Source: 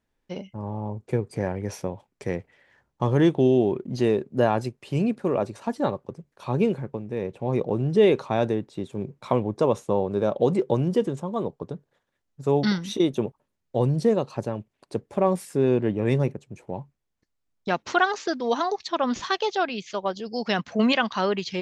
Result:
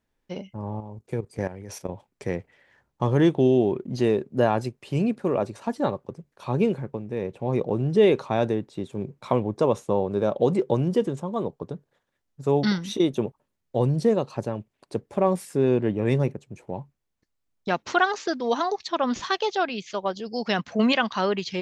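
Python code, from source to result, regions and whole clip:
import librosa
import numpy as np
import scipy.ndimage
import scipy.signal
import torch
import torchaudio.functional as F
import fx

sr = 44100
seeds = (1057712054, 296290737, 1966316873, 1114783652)

y = fx.chain(x, sr, fx.high_shelf(hz=4300.0, db=7.5),
    fx.level_steps(step_db=13), at=(0.8, 1.89))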